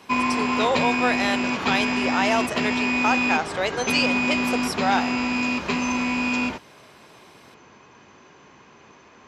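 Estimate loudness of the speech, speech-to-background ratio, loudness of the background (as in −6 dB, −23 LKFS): −26.0 LKFS, −2.5 dB, −23.5 LKFS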